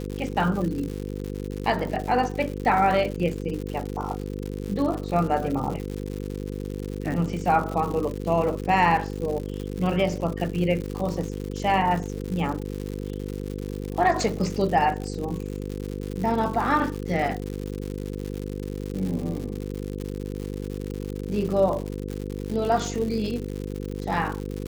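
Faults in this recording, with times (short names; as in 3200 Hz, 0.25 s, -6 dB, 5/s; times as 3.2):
buzz 50 Hz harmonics 10 -32 dBFS
crackle 160/s -30 dBFS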